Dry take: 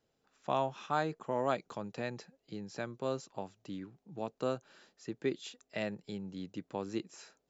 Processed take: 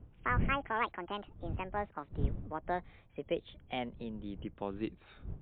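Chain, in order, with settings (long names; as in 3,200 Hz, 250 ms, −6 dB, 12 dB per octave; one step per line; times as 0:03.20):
gliding playback speed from 190% → 87%
wind on the microphone 110 Hz −41 dBFS
MP3 64 kbit/s 8,000 Hz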